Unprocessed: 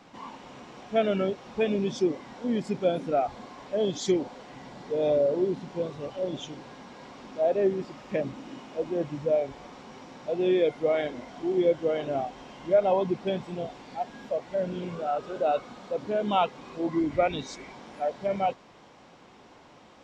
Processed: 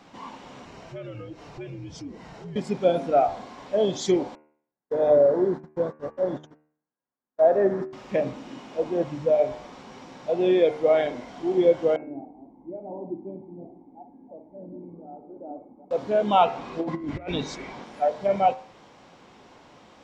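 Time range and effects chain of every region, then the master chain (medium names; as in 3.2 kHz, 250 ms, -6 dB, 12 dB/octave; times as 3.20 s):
0.65–2.56 s: band-stop 3.5 kHz, Q 10 + compression 3:1, threshold -41 dBFS + frequency shift -75 Hz
4.35–7.93 s: gate -37 dBFS, range -51 dB + resonant high shelf 2.1 kHz -6.5 dB, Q 3
11.96–15.91 s: chunks repeated in reverse 169 ms, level -11 dB + cascade formant filter u + flutter echo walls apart 9.9 m, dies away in 0.34 s
16.46–17.84 s: treble shelf 6.5 kHz -10.5 dB + compressor with a negative ratio -30 dBFS, ratio -0.5
whole clip: de-hum 76.05 Hz, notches 37; dynamic bell 760 Hz, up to +5 dB, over -36 dBFS, Q 1.1; trim +2 dB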